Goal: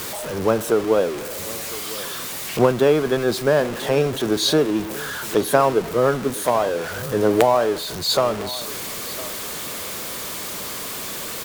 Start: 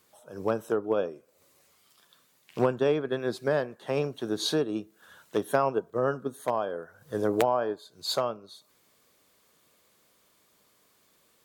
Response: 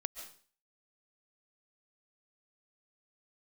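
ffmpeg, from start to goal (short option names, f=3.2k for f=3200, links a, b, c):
-af "aeval=exprs='val(0)+0.5*0.0251*sgn(val(0))':c=same,aecho=1:1:1006:0.126,volume=7.5dB"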